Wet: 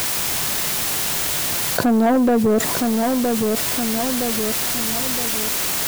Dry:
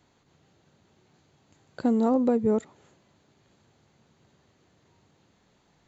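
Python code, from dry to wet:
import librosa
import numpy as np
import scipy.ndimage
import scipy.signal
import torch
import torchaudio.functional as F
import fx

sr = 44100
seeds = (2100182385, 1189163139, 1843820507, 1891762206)

p1 = scipy.signal.sosfilt(scipy.signal.butter(4, 54.0, 'highpass', fs=sr, output='sos'), x)
p2 = fx.small_body(p1, sr, hz=(700.0, 1000.0, 1700.0, 2800.0), ring_ms=45, db=9)
p3 = fx.quant_dither(p2, sr, seeds[0], bits=8, dither='triangular')
p4 = 10.0 ** (-20.0 / 20.0) * np.tanh(p3 / 10.0 ** (-20.0 / 20.0))
p5 = p4 + fx.echo_feedback(p4, sr, ms=966, feedback_pct=34, wet_db=-12, dry=0)
p6 = fx.env_flatten(p5, sr, amount_pct=70)
y = p6 * 10.0 ** (8.5 / 20.0)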